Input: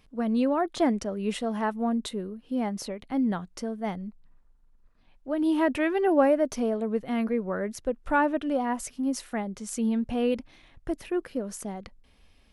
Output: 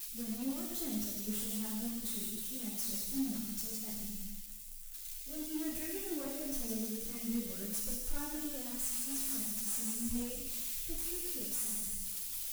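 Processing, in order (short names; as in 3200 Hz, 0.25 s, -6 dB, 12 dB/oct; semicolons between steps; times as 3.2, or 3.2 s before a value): switching spikes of -19 dBFS; high shelf 7600 Hz +8.5 dB; notches 50/100/150/200 Hz; on a send: thin delay 0.159 s, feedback 63%, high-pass 1700 Hz, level -6 dB; on the sum: Schroeder reverb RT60 1.1 s, combs from 26 ms, DRR 0.5 dB; in parallel at -2 dB: limiter -14 dBFS, peak gain reduction 9.5 dB; on the sum: passive tone stack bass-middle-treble 10-0-1; hard clip -32 dBFS, distortion -14 dB; ensemble effect; gain +3 dB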